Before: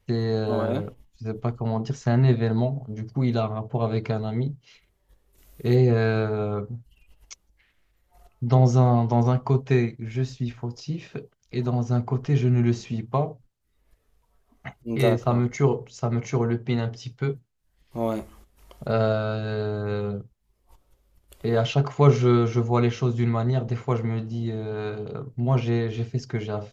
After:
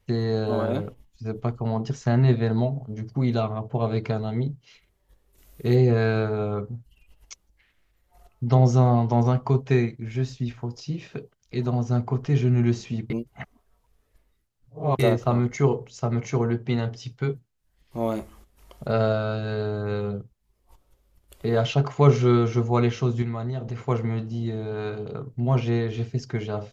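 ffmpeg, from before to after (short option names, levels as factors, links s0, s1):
-filter_complex "[0:a]asettb=1/sr,asplit=3[s0][s1][s2];[s0]atrim=end=23.224[s3];[s1]atrim=start=23.22:end=23.79,asetpts=PTS-STARTPTS,afade=t=in:d=0.004:c=qsin,afade=t=out:st=0.566:d=0.004:c=qsin,acompressor=threshold=0.0316:ratio=2:attack=3.2:release=140:knee=1:detection=peak[s4];[s2]atrim=start=23.786[s5];[s3][s4]acrossfade=d=0.004:c1=hsin:c2=qsin[s6];[s6][s5]acrossfade=d=0.004:c1=qsin:c2=hsin,asplit=3[s7][s8][s9];[s7]atrim=end=13.102[s10];[s8]atrim=start=13.098:end=14.992,asetpts=PTS-STARTPTS,areverse[s11];[s9]atrim=start=14.988[s12];[s10][s11]acrossfade=d=0.004:c1=hsin:c2=hsin[s13];[s13][s12]acrossfade=d=0.004:c1=hsin:c2=hsin"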